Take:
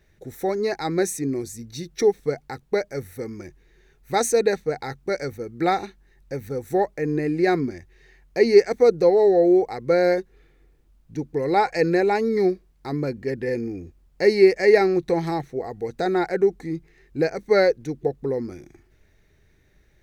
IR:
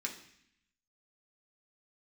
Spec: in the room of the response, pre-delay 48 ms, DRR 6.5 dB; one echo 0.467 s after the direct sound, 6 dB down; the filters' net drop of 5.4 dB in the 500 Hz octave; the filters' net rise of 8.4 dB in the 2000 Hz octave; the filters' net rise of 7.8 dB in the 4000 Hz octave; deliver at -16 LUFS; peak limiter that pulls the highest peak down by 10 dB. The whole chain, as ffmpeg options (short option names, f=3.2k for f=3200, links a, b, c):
-filter_complex "[0:a]equalizer=f=500:t=o:g=-7.5,equalizer=f=2k:t=o:g=8.5,equalizer=f=4k:t=o:g=7,alimiter=limit=-14dB:level=0:latency=1,aecho=1:1:467:0.501,asplit=2[a][b];[1:a]atrim=start_sample=2205,adelay=48[c];[b][c]afir=irnorm=-1:irlink=0,volume=-7.5dB[d];[a][d]amix=inputs=2:normalize=0,volume=9dB"